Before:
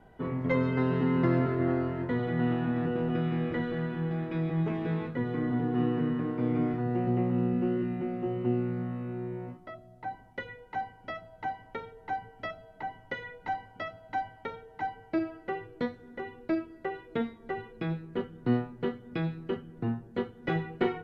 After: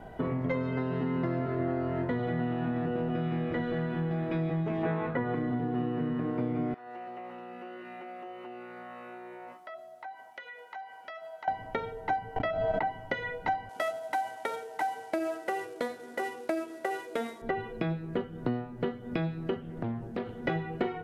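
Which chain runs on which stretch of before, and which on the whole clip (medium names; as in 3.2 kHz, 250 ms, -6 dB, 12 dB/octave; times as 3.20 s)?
4.83–5.35 s: low-pass 3.3 kHz + peaking EQ 1.1 kHz +9 dB 2.2 oct
6.74–11.48 s: high-pass 830 Hz + compression 5:1, threshold -51 dBFS
12.36–12.86 s: low-pass 3.8 kHz + gate -53 dBFS, range -20 dB + swell ahead of each attack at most 31 dB/s
13.69–17.42 s: CVSD coder 64 kbps + high-pass 380 Hz + compression 2.5:1, threshold -36 dBFS
19.61–20.41 s: compression 3:1, threshold -41 dBFS + loudspeaker Doppler distortion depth 0.33 ms
whole clip: compression, threshold -38 dBFS; peaking EQ 660 Hz +6 dB 0.38 oct; trim +9 dB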